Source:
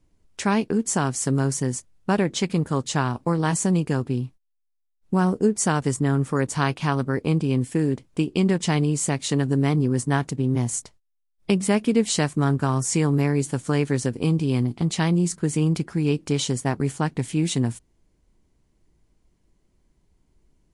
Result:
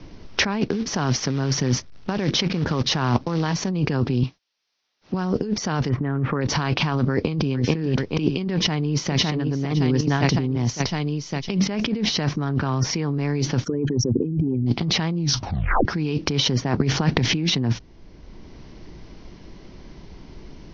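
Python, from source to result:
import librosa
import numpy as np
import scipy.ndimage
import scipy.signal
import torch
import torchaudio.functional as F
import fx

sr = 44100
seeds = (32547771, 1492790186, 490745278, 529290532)

y = fx.quant_float(x, sr, bits=2, at=(0.61, 3.69))
y = fx.highpass(y, sr, hz=390.0, slope=6, at=(4.23, 5.14))
y = fx.lowpass(y, sr, hz=2200.0, slope=24, at=(5.88, 6.4), fade=0.02)
y = fx.echo_throw(y, sr, start_s=7.11, length_s=0.4, ms=430, feedback_pct=30, wet_db=-7.5)
y = fx.echo_throw(y, sr, start_s=8.55, length_s=0.62, ms=560, feedback_pct=50, wet_db=-3.0)
y = fx.level_steps(y, sr, step_db=13, at=(9.74, 10.17), fade=0.02)
y = fx.high_shelf(y, sr, hz=5200.0, db=6.5, at=(10.69, 11.6))
y = fx.lowpass(y, sr, hz=4100.0, slope=12, at=(12.49, 12.91))
y = fx.envelope_sharpen(y, sr, power=3.0, at=(13.63, 14.66), fade=0.02)
y = fx.over_compress(y, sr, threshold_db=-29.0, ratio=-0.5, at=(16.8, 17.33), fade=0.02)
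y = fx.edit(y, sr, fx.tape_stop(start_s=15.17, length_s=0.68), tone=tone)
y = fx.over_compress(y, sr, threshold_db=-30.0, ratio=-1.0)
y = scipy.signal.sosfilt(scipy.signal.butter(16, 5900.0, 'lowpass', fs=sr, output='sos'), y)
y = fx.band_squash(y, sr, depth_pct=40)
y = y * 10.0 ** (8.5 / 20.0)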